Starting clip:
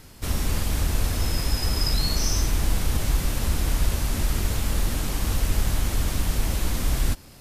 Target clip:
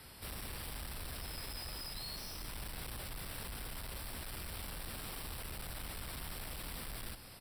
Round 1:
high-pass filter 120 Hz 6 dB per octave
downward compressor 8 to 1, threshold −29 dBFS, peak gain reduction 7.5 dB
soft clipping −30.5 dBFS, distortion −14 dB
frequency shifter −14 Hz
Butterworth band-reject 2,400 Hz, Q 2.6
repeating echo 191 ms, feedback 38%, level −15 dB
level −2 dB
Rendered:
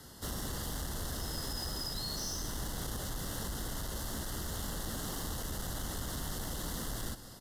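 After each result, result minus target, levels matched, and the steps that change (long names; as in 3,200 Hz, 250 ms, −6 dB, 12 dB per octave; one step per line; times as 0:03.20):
soft clipping: distortion −7 dB; 250 Hz band +4.0 dB; 2,000 Hz band −4.0 dB
change: soft clipping −39.5 dBFS, distortion −7 dB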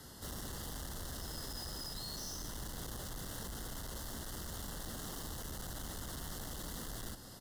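2,000 Hz band −3.5 dB; 250 Hz band +3.5 dB
change: Butterworth band-reject 6,600 Hz, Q 2.6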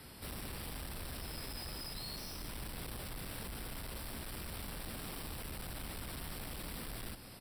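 250 Hz band +4.0 dB
add after high-pass filter: parametric band 260 Hz −6 dB 1.9 octaves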